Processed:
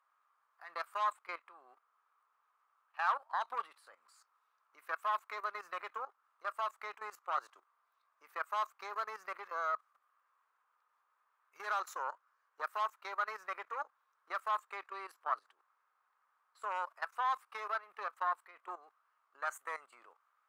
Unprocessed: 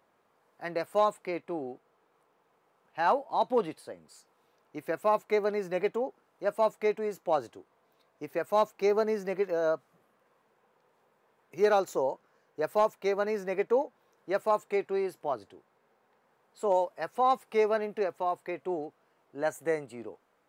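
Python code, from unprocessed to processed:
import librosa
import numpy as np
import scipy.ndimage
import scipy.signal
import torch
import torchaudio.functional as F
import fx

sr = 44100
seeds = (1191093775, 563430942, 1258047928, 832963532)

y = fx.cheby_harmonics(x, sr, harmonics=(4,), levels_db=(-17,), full_scale_db=-15.5)
y = fx.level_steps(y, sr, step_db=16)
y = fx.highpass_res(y, sr, hz=1200.0, q=5.3)
y = F.gain(torch.from_numpy(y), -3.0).numpy()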